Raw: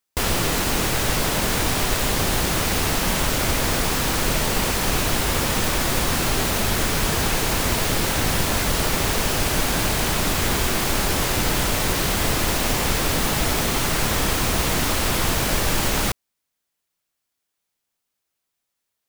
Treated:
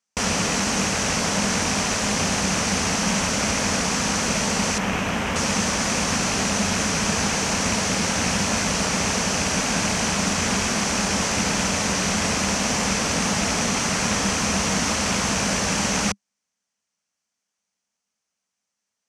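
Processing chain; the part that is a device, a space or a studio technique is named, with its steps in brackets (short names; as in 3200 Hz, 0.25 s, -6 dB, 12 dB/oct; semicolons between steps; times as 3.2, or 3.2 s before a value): 4.78–5.36 band shelf 6500 Hz -11 dB; car door speaker with a rattle (rattling part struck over -23 dBFS, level -18 dBFS; speaker cabinet 91–8500 Hz, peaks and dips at 130 Hz -9 dB, 200 Hz +9 dB, 350 Hz -8 dB, 3700 Hz -5 dB, 6000 Hz +8 dB)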